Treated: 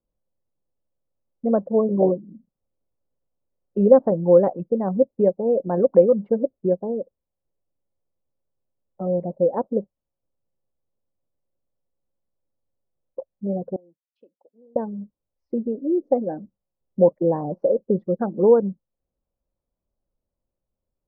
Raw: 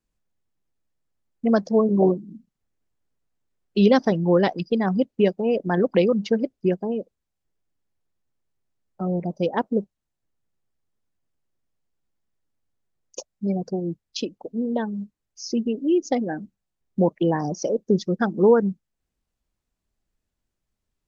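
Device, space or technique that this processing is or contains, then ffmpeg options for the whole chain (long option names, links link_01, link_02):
under water: -filter_complex "[0:a]lowpass=frequency=1100:width=0.5412,lowpass=frequency=1100:width=1.3066,equalizer=frequency=540:width_type=o:width=0.31:gain=11.5,asettb=1/sr,asplit=3[link_01][link_02][link_03];[link_01]atrim=end=13.764[link_04];[link_02]atrim=start=13.76:end=14.76,asetpts=PTS-STARTPTS,afade=type=in:duration=0.004:curve=qsin,afade=type=out:start_time=0.996:duration=0.004:curve=qsin,aderivative[link_05];[link_03]atrim=start=14.756[link_06];[link_04][link_05]acrossfade=duration=0.004:curve1=hsin:curve2=qsin[link_07];[link_07][link_06]acrossfade=duration=0.004:curve1=qsin:curve2=hsin,volume=-2.5dB"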